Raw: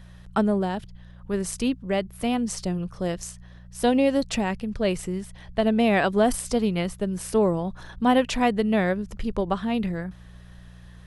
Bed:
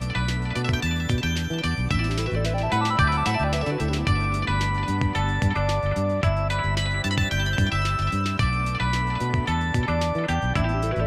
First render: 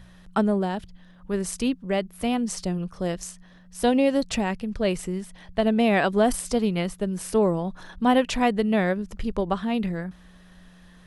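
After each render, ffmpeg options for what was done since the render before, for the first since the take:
-af "bandreject=f=60:t=h:w=4,bandreject=f=120:t=h:w=4"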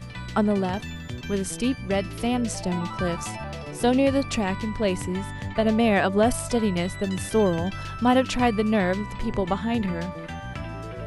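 -filter_complex "[1:a]volume=0.282[s0];[0:a][s0]amix=inputs=2:normalize=0"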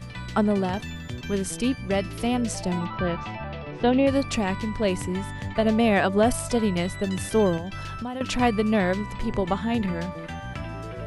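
-filter_complex "[0:a]asplit=3[s0][s1][s2];[s0]afade=t=out:st=2.84:d=0.02[s3];[s1]lowpass=f=3700:w=0.5412,lowpass=f=3700:w=1.3066,afade=t=in:st=2.84:d=0.02,afade=t=out:st=4.06:d=0.02[s4];[s2]afade=t=in:st=4.06:d=0.02[s5];[s3][s4][s5]amix=inputs=3:normalize=0,asettb=1/sr,asplit=3[s6][s7][s8];[s6]atrim=end=7.574[s9];[s7]atrim=start=7.57:end=8.21,asetpts=PTS-STARTPTS,afade=t=in:d=0.004:c=qsin,afade=t=out:st=0.636:d=0.004:c=qsin,acompressor=threshold=0.0355:ratio=6:attack=3.2:release=140:knee=1:detection=peak[s10];[s8]atrim=start=8.206[s11];[s9][s10]acrossfade=d=0.004:c1=hsin:c2=qsin[s12];[s12][s11]acrossfade=d=0.004:c1=qsin:c2=hsin"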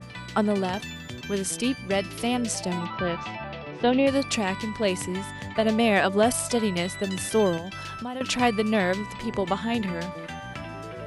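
-af "highpass=f=180:p=1,adynamicequalizer=threshold=0.0126:dfrequency=2200:dqfactor=0.7:tfrequency=2200:tqfactor=0.7:attack=5:release=100:ratio=0.375:range=2:mode=boostabove:tftype=highshelf"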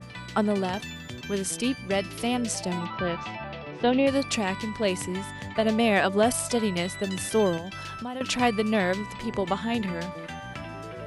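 -af "volume=0.891"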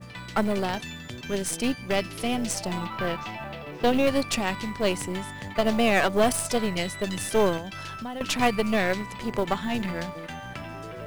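-af "aeval=exprs='0.335*(cos(1*acos(clip(val(0)/0.335,-1,1)))-cos(1*PI/2))+0.0075*(cos(5*acos(clip(val(0)/0.335,-1,1)))-cos(5*PI/2))+0.0376*(cos(6*acos(clip(val(0)/0.335,-1,1)))-cos(6*PI/2))+0.00531*(cos(7*acos(clip(val(0)/0.335,-1,1)))-cos(7*PI/2))':c=same,acrusher=bits=7:mode=log:mix=0:aa=0.000001"

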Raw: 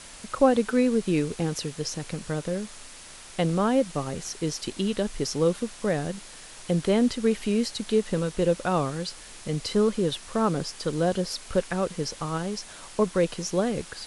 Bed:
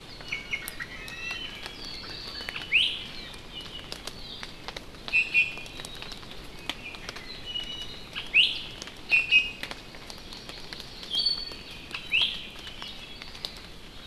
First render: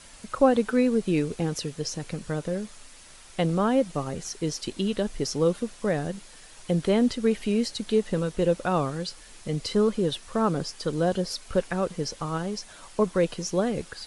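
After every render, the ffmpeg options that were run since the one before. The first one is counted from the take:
-af "afftdn=nr=6:nf=-45"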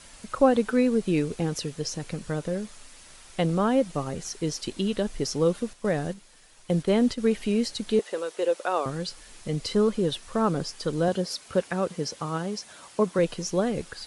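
-filter_complex "[0:a]asettb=1/sr,asplit=3[s0][s1][s2];[s0]atrim=end=5.734[s3];[s1]atrim=start=5.73:end=7.18,asetpts=PTS-STARTPTS,afade=t=in:d=0.004:c=qsin,afade=t=out:st=1.446:d=0.004:c=qsin,agate=range=0.447:threshold=0.02:ratio=16:release=100:detection=peak[s4];[s2]atrim=start=7.176[s5];[s3][s4]acrossfade=d=0.004:c1=hsin:c2=qsin[s6];[s6][s5]acrossfade=d=0.004:c1=qsin:c2=hsin,asettb=1/sr,asplit=3[s7][s8][s9];[s7]atrim=end=7.994[s10];[s8]atrim=start=7.99:end=8.86,asetpts=PTS-STARTPTS,afade=t=in:d=0.004:c=qsin,afade=t=out:st=0.866:d=0.004:c=qsin,highpass=f=380:w=0.5412,highpass=f=380:w=1.3066[s11];[s9]atrim=start=8.856[s12];[s10][s11]acrossfade=d=0.004:c1=hsin:c2=qsin[s13];[s13][s12]acrossfade=d=0.004:c1=qsin:c2=hsin,asettb=1/sr,asplit=3[s14][s15][s16];[s14]atrim=end=11.084[s17];[s15]atrim=start=11.08:end=13.19,asetpts=PTS-STARTPTS,afade=t=in:d=0.004:c=qsin,afade=t=out:st=2.106:d=0.004:c=qsin,highpass=110[s18];[s16]atrim=start=13.186[s19];[s17][s18]acrossfade=d=0.004:c1=hsin:c2=qsin[s20];[s20][s19]acrossfade=d=0.004:c1=qsin:c2=hsin"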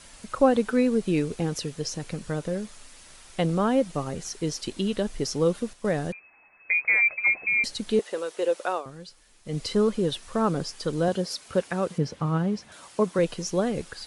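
-filter_complex "[0:a]asettb=1/sr,asplit=3[s0][s1][s2];[s0]atrim=end=6.124[s3];[s1]atrim=start=6.12:end=7.64,asetpts=PTS-STARTPTS,afade=t=in:d=0.004:c=qsin,afade=t=out:st=1.516:d=0.004:c=qsin,lowpass=f=2200:t=q:w=0.5098,lowpass=f=2200:t=q:w=0.6013,lowpass=f=2200:t=q:w=0.9,lowpass=f=2200:t=q:w=2.563,afreqshift=-2600[s4];[s2]atrim=start=7.636[s5];[s3][s4]acrossfade=d=0.004:c1=hsin:c2=qsin[s6];[s6][s5]acrossfade=d=0.004:c1=qsin:c2=hsin,asettb=1/sr,asplit=3[s7][s8][s9];[s7]atrim=end=11.984[s10];[s8]atrim=start=11.98:end=12.72,asetpts=PTS-STARTPTS,afade=t=in:d=0.004:c=qsin,afade=t=out:st=0.736:d=0.004:c=qsin,bass=f=250:g=10,treble=f=4000:g=-11[s11];[s9]atrim=start=12.716[s12];[s10][s11]acrossfade=d=0.004:c1=hsin:c2=qsin[s13];[s13][s12]acrossfade=d=0.004:c1=qsin:c2=hsin,asplit=3[s14][s15][s16];[s14]atrim=end=8.83,asetpts=PTS-STARTPTS,afade=t=out:st=8.7:d=0.13:silence=0.281838[s17];[s15]atrim=start=8.83:end=9.44,asetpts=PTS-STARTPTS,volume=0.282[s18];[s16]atrim=start=9.44,asetpts=PTS-STARTPTS,afade=t=in:d=0.13:silence=0.281838[s19];[s17][s18][s19]concat=n=3:v=0:a=1"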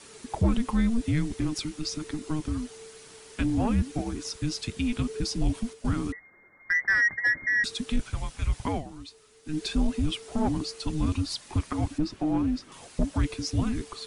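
-af "afreqshift=-460,asoftclip=type=tanh:threshold=0.168"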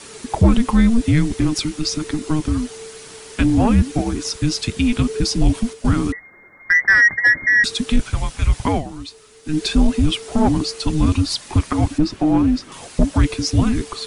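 -af "volume=3.35"

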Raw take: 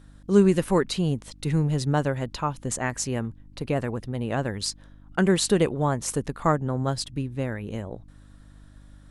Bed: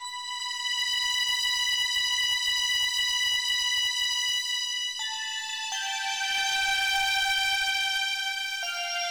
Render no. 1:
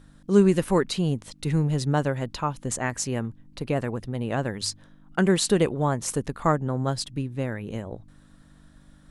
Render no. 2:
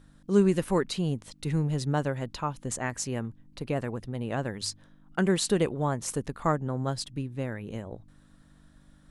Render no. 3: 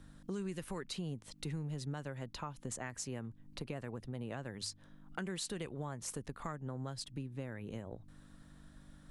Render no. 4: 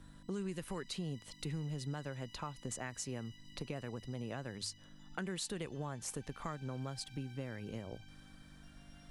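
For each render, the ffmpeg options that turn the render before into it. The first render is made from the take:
-af "bandreject=f=50:t=h:w=4,bandreject=f=100:t=h:w=4"
-af "volume=0.631"
-filter_complex "[0:a]acrossover=split=130|1300[s0][s1][s2];[s1]alimiter=limit=0.0708:level=0:latency=1:release=191[s3];[s0][s3][s2]amix=inputs=3:normalize=0,acompressor=threshold=0.00708:ratio=2.5"
-filter_complex "[1:a]volume=0.0168[s0];[0:a][s0]amix=inputs=2:normalize=0"

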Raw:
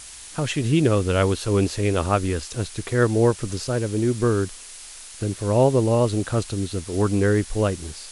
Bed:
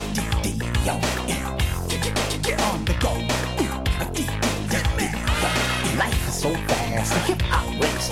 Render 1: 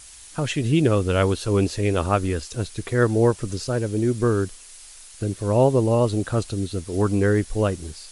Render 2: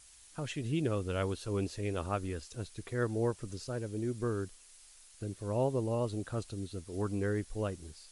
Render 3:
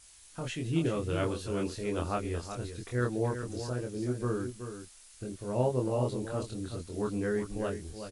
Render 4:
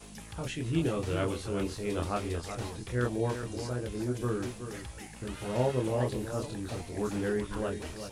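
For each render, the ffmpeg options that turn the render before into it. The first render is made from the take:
-af "afftdn=nr=6:nf=-41"
-af "volume=0.211"
-filter_complex "[0:a]asplit=2[s0][s1];[s1]adelay=24,volume=0.794[s2];[s0][s2]amix=inputs=2:normalize=0,aecho=1:1:376:0.355"
-filter_complex "[1:a]volume=0.0794[s0];[0:a][s0]amix=inputs=2:normalize=0"

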